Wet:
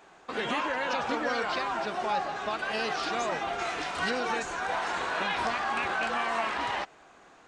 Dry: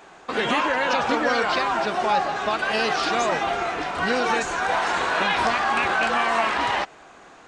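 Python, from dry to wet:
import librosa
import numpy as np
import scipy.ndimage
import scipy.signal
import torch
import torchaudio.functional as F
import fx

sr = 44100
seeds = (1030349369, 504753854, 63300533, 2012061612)

y = fx.high_shelf(x, sr, hz=2400.0, db=10.0, at=(3.58, 4.09), fade=0.02)
y = y * librosa.db_to_amplitude(-8.0)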